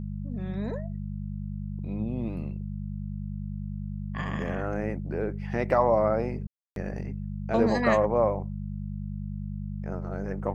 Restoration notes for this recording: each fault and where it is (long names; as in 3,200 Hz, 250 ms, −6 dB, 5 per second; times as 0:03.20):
mains hum 50 Hz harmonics 4 −34 dBFS
0:06.47–0:06.76: drop-out 292 ms